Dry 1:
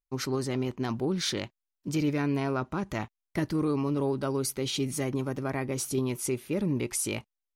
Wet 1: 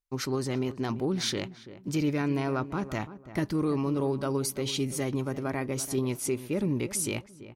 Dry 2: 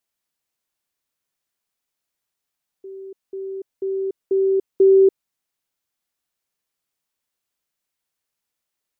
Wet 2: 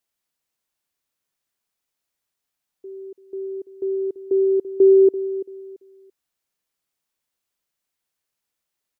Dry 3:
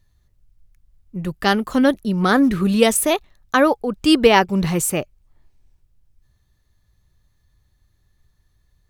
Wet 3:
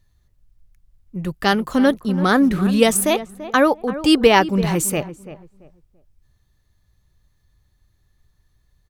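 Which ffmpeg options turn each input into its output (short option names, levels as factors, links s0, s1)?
-filter_complex "[0:a]asplit=2[s0][s1];[s1]adelay=337,lowpass=f=1500:p=1,volume=0.211,asplit=2[s2][s3];[s3]adelay=337,lowpass=f=1500:p=1,volume=0.26,asplit=2[s4][s5];[s5]adelay=337,lowpass=f=1500:p=1,volume=0.26[s6];[s0][s2][s4][s6]amix=inputs=4:normalize=0"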